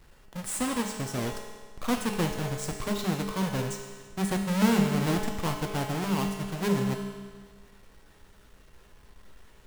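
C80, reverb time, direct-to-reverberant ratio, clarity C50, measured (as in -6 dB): 5.5 dB, 1.6 s, 1.5 dB, 4.0 dB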